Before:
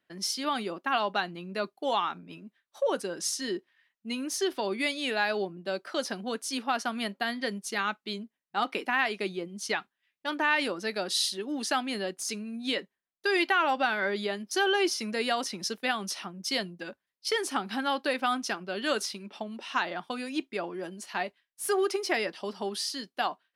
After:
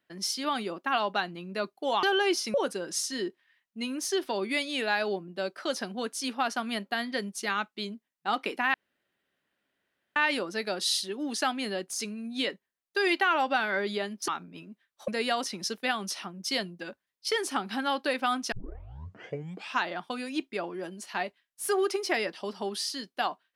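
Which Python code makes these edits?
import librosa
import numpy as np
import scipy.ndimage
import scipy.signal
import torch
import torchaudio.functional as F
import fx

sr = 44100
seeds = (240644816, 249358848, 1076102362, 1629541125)

y = fx.edit(x, sr, fx.swap(start_s=2.03, length_s=0.8, other_s=14.57, other_length_s=0.51),
    fx.room_tone_fill(start_s=9.03, length_s=1.42),
    fx.tape_start(start_s=18.52, length_s=1.26), tone=tone)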